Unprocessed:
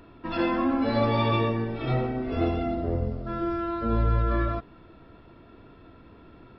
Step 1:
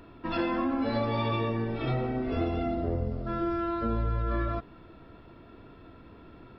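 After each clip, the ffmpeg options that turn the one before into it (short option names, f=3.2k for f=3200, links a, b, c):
-af "acompressor=threshold=-25dB:ratio=6"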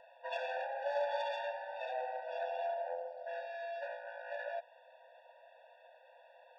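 -af "highshelf=f=2.8k:g=-9.5,aeval=exprs='(tanh(28.2*val(0)+0.4)-tanh(0.4))/28.2':c=same,afftfilt=real='re*eq(mod(floor(b*sr/1024/480),2),1)':imag='im*eq(mod(floor(b*sr/1024/480),2),1)':win_size=1024:overlap=0.75,volume=3dB"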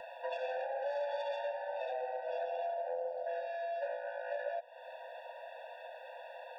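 -filter_complex "[0:a]acrossover=split=1300[a][b];[a]alimiter=level_in=11dB:limit=-24dB:level=0:latency=1:release=219,volume=-11dB[c];[c][b]amix=inputs=2:normalize=0,acrossover=split=500[d][e];[e]acompressor=threshold=-57dB:ratio=6[f];[d][f]amix=inputs=2:normalize=0,volume=12.5dB"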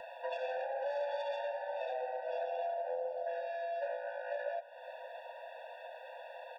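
-af "aecho=1:1:573:0.15"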